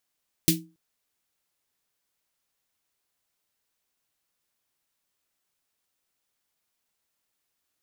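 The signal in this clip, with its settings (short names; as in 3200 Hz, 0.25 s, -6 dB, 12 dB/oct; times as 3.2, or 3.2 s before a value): snare drum length 0.28 s, tones 170 Hz, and 320 Hz, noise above 2400 Hz, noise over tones 2.5 dB, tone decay 0.32 s, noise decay 0.17 s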